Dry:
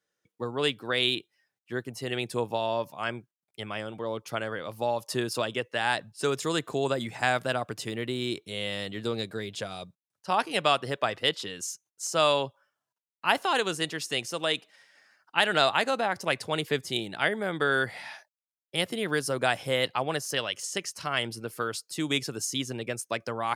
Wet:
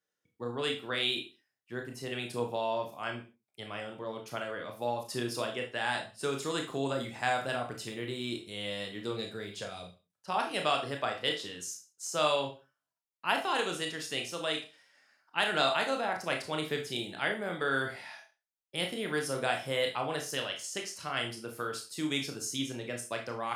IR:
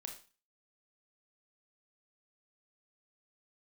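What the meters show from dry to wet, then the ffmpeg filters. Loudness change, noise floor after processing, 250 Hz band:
-4.5 dB, under -85 dBFS, -4.0 dB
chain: -filter_complex "[1:a]atrim=start_sample=2205,afade=t=out:st=0.33:d=0.01,atrim=end_sample=14994,asetrate=48510,aresample=44100[a];[0:a][a]afir=irnorm=-1:irlink=0"

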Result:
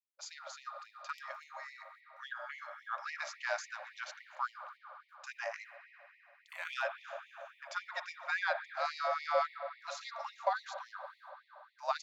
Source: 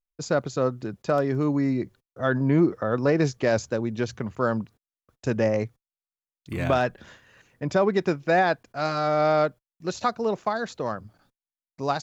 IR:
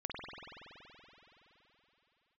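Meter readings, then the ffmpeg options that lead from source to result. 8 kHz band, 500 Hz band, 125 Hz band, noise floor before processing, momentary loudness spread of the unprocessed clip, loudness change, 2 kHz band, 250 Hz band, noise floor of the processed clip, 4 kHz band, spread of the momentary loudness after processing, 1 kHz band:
n/a, -18.0 dB, under -40 dB, under -85 dBFS, 11 LU, -14.5 dB, -7.0 dB, under -40 dB, -67 dBFS, -7.5 dB, 18 LU, -10.0 dB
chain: -filter_complex "[0:a]highshelf=f=4.3k:g=-7.5,afreqshift=-68,asplit=2[a][b];[1:a]atrim=start_sample=2205,lowshelf=f=270:g=4.5[c];[b][c]afir=irnorm=-1:irlink=0,volume=-8dB[d];[a][d]amix=inputs=2:normalize=0,afftfilt=real='re*gte(b*sr/1024,530*pow(1900/530,0.5+0.5*sin(2*PI*3.6*pts/sr)))':imag='im*gte(b*sr/1024,530*pow(1900/530,0.5+0.5*sin(2*PI*3.6*pts/sr)))':win_size=1024:overlap=0.75,volume=-6dB"

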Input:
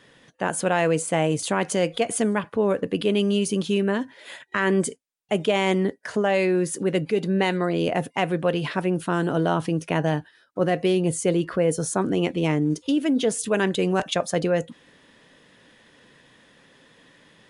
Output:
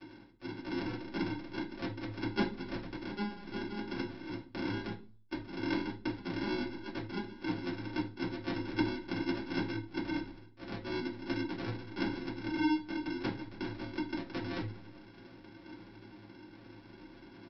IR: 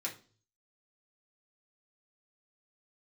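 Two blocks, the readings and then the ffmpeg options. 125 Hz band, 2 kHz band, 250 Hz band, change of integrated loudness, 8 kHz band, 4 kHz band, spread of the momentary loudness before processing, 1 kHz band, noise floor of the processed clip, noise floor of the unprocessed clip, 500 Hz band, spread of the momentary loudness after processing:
-15.0 dB, -12.0 dB, -11.0 dB, -14.0 dB, under -30 dB, -12.5 dB, 5 LU, -15.0 dB, -55 dBFS, -57 dBFS, -19.5 dB, 18 LU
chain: -filter_complex "[0:a]highpass=870,aeval=exprs='0.282*(cos(1*acos(clip(val(0)/0.282,-1,1)))-cos(1*PI/2))+0.0316*(cos(3*acos(clip(val(0)/0.282,-1,1)))-cos(3*PI/2))+0.112*(cos(4*acos(clip(val(0)/0.282,-1,1)))-cos(4*PI/2))':c=same,aecho=1:1:3.3:0.81,areverse,acompressor=threshold=-37dB:ratio=12,areverse,aphaser=in_gain=1:out_gain=1:delay=3.7:decay=0.33:speed=0.83:type=sinusoidal,acrossover=split=2600[a][b];[b]acompressor=threshold=-51dB:ratio=4:attack=1:release=60[c];[a][c]amix=inputs=2:normalize=0,aresample=11025,acrusher=samples=18:mix=1:aa=0.000001,aresample=44100[d];[1:a]atrim=start_sample=2205[e];[d][e]afir=irnorm=-1:irlink=0,volume=8.5dB"

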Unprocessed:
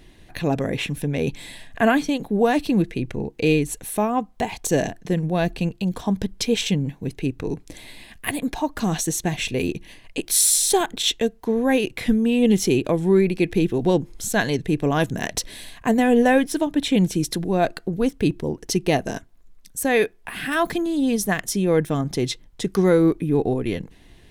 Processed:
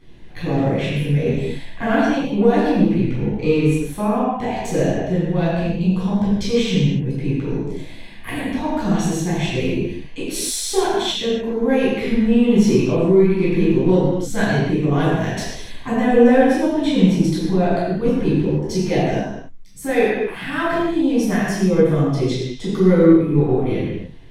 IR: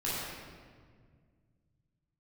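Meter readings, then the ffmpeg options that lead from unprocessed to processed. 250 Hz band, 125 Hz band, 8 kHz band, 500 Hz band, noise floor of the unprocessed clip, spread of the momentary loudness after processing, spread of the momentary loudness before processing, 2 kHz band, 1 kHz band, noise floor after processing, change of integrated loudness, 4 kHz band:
+4.5 dB, +6.0 dB, -6.5 dB, +4.0 dB, -50 dBFS, 10 LU, 11 LU, +0.5 dB, +2.0 dB, -34 dBFS, +3.5 dB, -0.5 dB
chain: -filter_complex "[0:a]lowpass=f=4k:p=1,asplit=2[a][b];[b]asoftclip=type=tanh:threshold=-17.5dB,volume=-5dB[c];[a][c]amix=inputs=2:normalize=0[d];[1:a]atrim=start_sample=2205,afade=t=out:st=0.42:d=0.01,atrim=end_sample=18963,asetrate=52920,aresample=44100[e];[d][e]afir=irnorm=-1:irlink=0,volume=-6dB"

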